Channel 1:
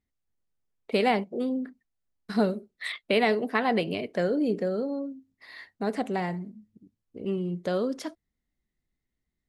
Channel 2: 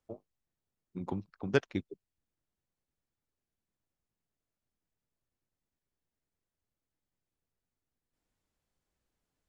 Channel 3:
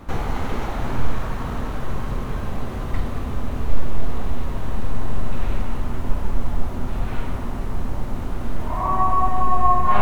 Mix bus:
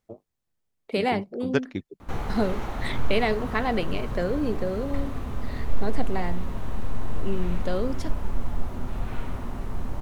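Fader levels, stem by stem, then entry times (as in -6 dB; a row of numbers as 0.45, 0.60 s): -1.0, +2.5, -5.5 dB; 0.00, 0.00, 2.00 s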